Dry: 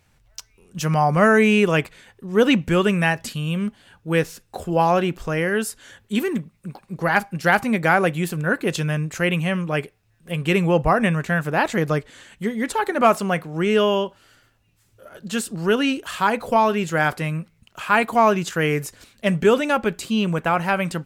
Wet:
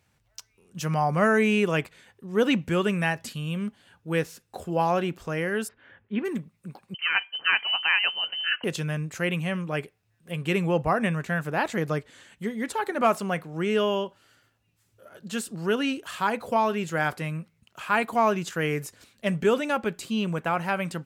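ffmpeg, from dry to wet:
-filter_complex "[0:a]asplit=3[s0][s1][s2];[s0]afade=t=out:st=5.67:d=0.02[s3];[s1]lowpass=f=2500:w=0.5412,lowpass=f=2500:w=1.3066,afade=t=in:st=5.67:d=0.02,afade=t=out:st=6.24:d=0.02[s4];[s2]afade=t=in:st=6.24:d=0.02[s5];[s3][s4][s5]amix=inputs=3:normalize=0,asettb=1/sr,asplit=3[s6][s7][s8];[s6]atrim=end=6.944[s9];[s7]atrim=start=6.94:end=8.64,asetpts=PTS-STARTPTS,afade=t=in:d=0.004:c=qsin,afade=t=out:st=1.696:d=0.004:c=qsin,lowpass=f=2700:t=q:w=0.5098,lowpass=f=2700:t=q:w=0.6013,lowpass=f=2700:t=q:w=0.9,lowpass=f=2700:t=q:w=2.563,afreqshift=-3200[s10];[s8]atrim=start=8.636[s11];[s9][s10]acrossfade=d=0.004:c1=hsin:c2=qsin[s12];[s12][s11]acrossfade=d=0.004:c1=qsin:c2=hsin,highpass=71,volume=0.501"

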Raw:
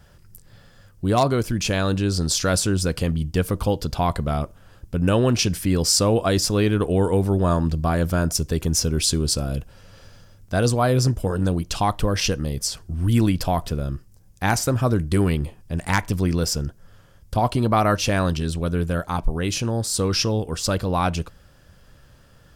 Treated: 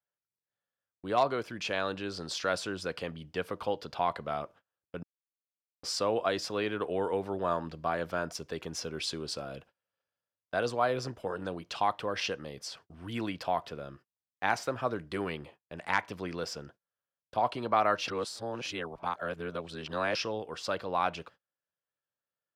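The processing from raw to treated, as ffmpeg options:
-filter_complex "[0:a]asplit=5[s0][s1][s2][s3][s4];[s0]atrim=end=5.03,asetpts=PTS-STARTPTS,afade=t=out:st=5.026:d=0.004:c=hsin[s5];[s1]atrim=start=5.03:end=5.83,asetpts=PTS-STARTPTS,volume=0[s6];[s2]atrim=start=5.83:end=18.082,asetpts=PTS-STARTPTS,afade=t=in:d=0.004:c=hsin[s7];[s3]atrim=start=18.078:end=20.152,asetpts=PTS-STARTPTS,areverse[s8];[s4]atrim=start=20.148[s9];[s5][s6][s7]concat=n=3:v=0:a=1[s10];[s10][s8]acrossfade=d=0.004:c1=hsin:c2=hsin[s11];[s11][s9]acrossfade=d=0.004:c1=hsin:c2=hsin,highpass=140,acrossover=split=430 4200:gain=0.224 1 0.112[s12][s13][s14];[s12][s13][s14]amix=inputs=3:normalize=0,agate=range=0.0251:threshold=0.00398:ratio=16:detection=peak,volume=0.531"

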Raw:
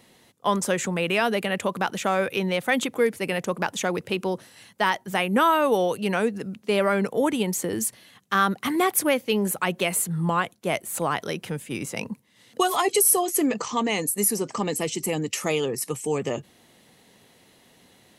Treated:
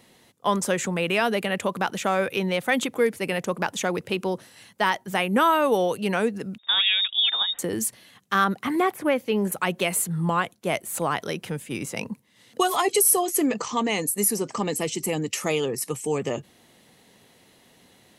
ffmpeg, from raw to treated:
-filter_complex "[0:a]asettb=1/sr,asplit=3[s0][s1][s2];[s0]atrim=end=6.584[s3];[s1]atrim=start=6.58:end=7.59,asetpts=PTS-STARTPTS,afade=t=in:d=0.004:c=qsin,afade=t=out:st=1.006:d=0.004:c=qsin,lowpass=f=3300:t=q:w=0.5098,lowpass=f=3300:t=q:w=0.6013,lowpass=f=3300:t=q:w=0.9,lowpass=f=3300:t=q:w=2.563,afreqshift=-3900[s4];[s2]atrim=start=7.586[s5];[s3][s4]acrossfade=d=0.004:c1=hsin:c2=qsin[s6];[s6][s5]acrossfade=d=0.004:c1=qsin:c2=hsin,asettb=1/sr,asplit=3[s7][s8][s9];[s7]atrim=end=8.444[s10];[s8]atrim=start=8.44:end=9.52,asetpts=PTS-STARTPTS,afade=t=in:d=0.004:c=qsin,afade=t=out:st=1.076:d=0.004:c=qsin,acrossover=split=2600[s11][s12];[s12]acompressor=threshold=0.00794:ratio=4:attack=1:release=60[s13];[s11][s13]amix=inputs=2:normalize=0[s14];[s9]atrim=start=9.516[s15];[s10][s14]acrossfade=d=0.004:c1=hsin:c2=qsin[s16];[s16][s15]acrossfade=d=0.004:c1=qsin:c2=hsin"

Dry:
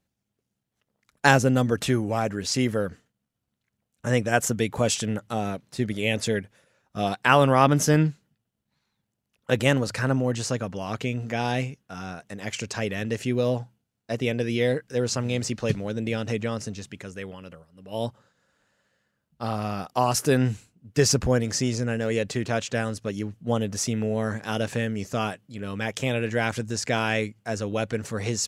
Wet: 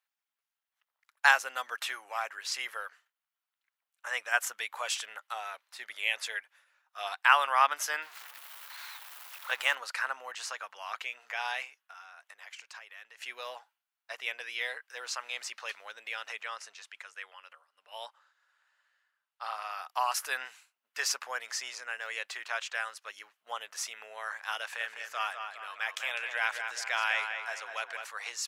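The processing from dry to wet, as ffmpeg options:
-filter_complex "[0:a]asettb=1/sr,asplit=3[s0][s1][s2];[s0]atrim=end=8.024[s3];[s1]atrim=start=8.02:end=9.75,asetpts=PTS-STARTPTS,afade=t=in:d=0.004:c=qsin,afade=t=out:st=1.726:d=0.004:c=qsin,aeval=exprs='val(0)+0.5*0.0211*sgn(val(0))':c=same[s4];[s2]atrim=start=9.746[s5];[s3][s4]acrossfade=d=0.004:c1=hsin:c2=qsin[s6];[s6][s5]acrossfade=d=0.004:c1=qsin:c2=hsin,asettb=1/sr,asplit=3[s7][s8][s9];[s7]atrim=end=11.804[s10];[s8]atrim=start=11.8:end=13.22,asetpts=PTS-STARTPTS,afade=t=in:d=0.004:c=qsin,afade=t=out:st=1.416:d=0.004:c=qsin,acompressor=threshold=0.00891:ratio=3:attack=3.2:release=140:knee=1:detection=peak[s11];[s9]atrim=start=13.216[s12];[s10][s11]acrossfade=d=0.004:c1=hsin:c2=qsin[s13];[s13][s12]acrossfade=d=0.004:c1=qsin:c2=hsin,asettb=1/sr,asplit=3[s14][s15][s16];[s14]atrim=end=16.464[s17];[s15]atrim=start=16.46:end=19.71,asetpts=PTS-STARTPTS,afade=t=in:d=0.004:c=qsin,afade=t=out:st=3.246:d=0.004:c=qsin,lowpass=11000[s18];[s16]atrim=start=19.706[s19];[s17][s18]acrossfade=d=0.004:c1=hsin:c2=qsin[s20];[s20][s19]acrossfade=d=0.004:c1=qsin:c2=hsin,asettb=1/sr,asplit=3[s21][s22][s23];[s21]atrim=end=24.604[s24];[s22]atrim=start=24.6:end=28.05,asetpts=PTS-STARTPTS,afade=t=in:d=0.004:c=qsin,afade=t=out:st=3.446:d=0.004:c=qsin,asplit=2[s25][s26];[s26]adelay=203,lowpass=f=3400:p=1,volume=0.501,asplit=2[s27][s28];[s28]adelay=203,lowpass=f=3400:p=1,volume=0.52,asplit=2[s29][s30];[s30]adelay=203,lowpass=f=3400:p=1,volume=0.52,asplit=2[s31][s32];[s32]adelay=203,lowpass=f=3400:p=1,volume=0.52,asplit=2[s33][s34];[s34]adelay=203,lowpass=f=3400:p=1,volume=0.52,asplit=2[s35][s36];[s36]adelay=203,lowpass=f=3400:p=1,volume=0.52[s37];[s25][s27][s29][s31][s33][s35][s37]amix=inputs=7:normalize=0,atrim=end_sample=152145[s38];[s23]atrim=start=28.046[s39];[s24][s38]acrossfade=d=0.004:c1=hsin:c2=qsin[s40];[s40][s39]acrossfade=d=0.004:c1=qsin:c2=hsin,highpass=f=970:w=0.5412,highpass=f=970:w=1.3066,equalizer=f=7100:t=o:w=1.6:g=-9"

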